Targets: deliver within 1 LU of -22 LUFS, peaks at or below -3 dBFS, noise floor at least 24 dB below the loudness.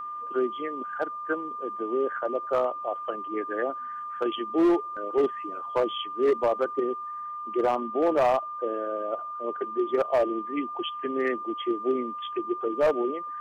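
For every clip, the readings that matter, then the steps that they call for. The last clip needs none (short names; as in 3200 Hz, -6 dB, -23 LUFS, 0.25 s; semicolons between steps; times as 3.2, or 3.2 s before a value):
clipped 0.9%; flat tops at -17.0 dBFS; steady tone 1200 Hz; tone level -33 dBFS; loudness -28.0 LUFS; peak -17.0 dBFS; loudness target -22.0 LUFS
-> clip repair -17 dBFS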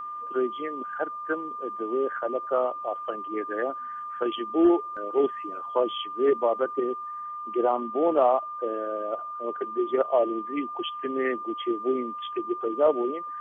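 clipped 0.0%; steady tone 1200 Hz; tone level -33 dBFS
-> notch 1200 Hz, Q 30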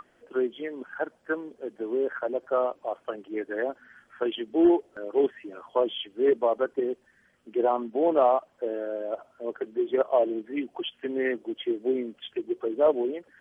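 steady tone none; loudness -28.0 LUFS; peak -10.0 dBFS; loudness target -22.0 LUFS
-> gain +6 dB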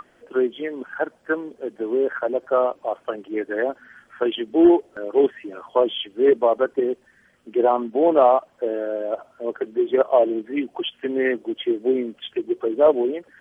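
loudness -22.0 LUFS; peak -4.0 dBFS; noise floor -58 dBFS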